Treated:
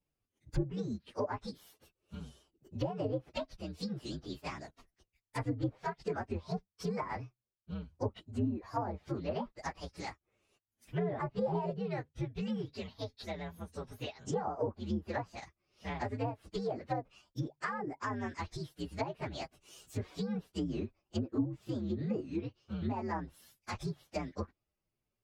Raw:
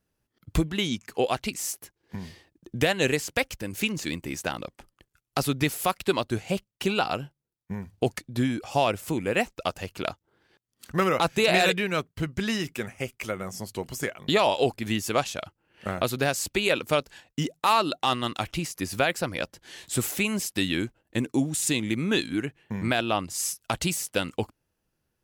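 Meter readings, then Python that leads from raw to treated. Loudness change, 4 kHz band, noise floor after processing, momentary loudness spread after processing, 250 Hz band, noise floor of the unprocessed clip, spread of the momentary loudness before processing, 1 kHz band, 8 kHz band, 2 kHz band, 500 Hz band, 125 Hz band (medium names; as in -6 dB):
-11.5 dB, -19.5 dB, under -85 dBFS, 10 LU, -8.5 dB, -81 dBFS, 12 LU, -11.5 dB, -24.0 dB, -18.0 dB, -11.0 dB, -6.5 dB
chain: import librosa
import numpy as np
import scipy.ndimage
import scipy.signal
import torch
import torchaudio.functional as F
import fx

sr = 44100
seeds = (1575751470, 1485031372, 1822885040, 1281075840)

y = fx.partial_stretch(x, sr, pct=126)
y = fx.env_lowpass_down(y, sr, base_hz=680.0, full_db=-23.0)
y = y * librosa.db_to_amplitude(-5.5)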